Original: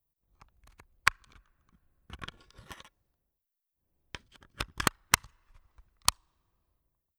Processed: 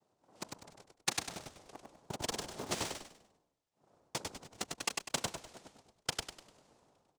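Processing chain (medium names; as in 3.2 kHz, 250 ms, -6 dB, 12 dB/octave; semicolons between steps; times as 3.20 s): local Wiener filter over 15 samples; treble shelf 4.8 kHz -11.5 dB; reverse; compression 10:1, threshold -50 dBFS, peak gain reduction 31.5 dB; reverse; noise-vocoded speech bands 2; in parallel at -11 dB: companded quantiser 4-bit; on the sum: frequency-shifting echo 99 ms, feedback 35%, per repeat -47 Hz, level -3.5 dB; trim +15 dB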